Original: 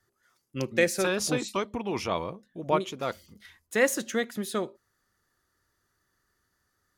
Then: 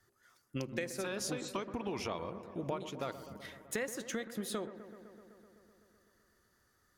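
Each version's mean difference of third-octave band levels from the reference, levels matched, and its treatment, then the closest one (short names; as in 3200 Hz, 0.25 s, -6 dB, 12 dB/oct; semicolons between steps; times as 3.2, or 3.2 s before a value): 7.0 dB: compressor 12:1, threshold -36 dBFS, peak gain reduction 19.5 dB; dark delay 0.127 s, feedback 77%, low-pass 1500 Hz, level -12 dB; gain +1.5 dB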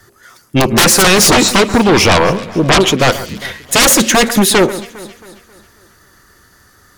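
10.0 dB: sine folder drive 18 dB, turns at -10 dBFS; on a send: echo with dull and thin repeats by turns 0.135 s, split 2100 Hz, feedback 66%, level -14 dB; on the sum: gain +5 dB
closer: first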